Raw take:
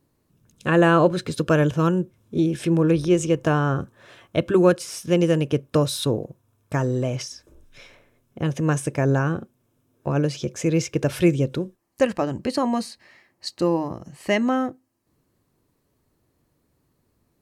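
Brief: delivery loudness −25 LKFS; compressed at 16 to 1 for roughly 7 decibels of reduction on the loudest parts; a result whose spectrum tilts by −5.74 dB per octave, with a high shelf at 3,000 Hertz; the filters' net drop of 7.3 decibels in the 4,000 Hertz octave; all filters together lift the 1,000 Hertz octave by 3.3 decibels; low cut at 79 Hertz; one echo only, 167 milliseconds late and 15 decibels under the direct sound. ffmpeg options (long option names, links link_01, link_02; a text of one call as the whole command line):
ffmpeg -i in.wav -af "highpass=79,equalizer=frequency=1000:width_type=o:gain=5.5,highshelf=frequency=3000:gain=-8.5,equalizer=frequency=4000:width_type=o:gain=-3.5,acompressor=threshold=-18dB:ratio=16,aecho=1:1:167:0.178,volume=1dB" out.wav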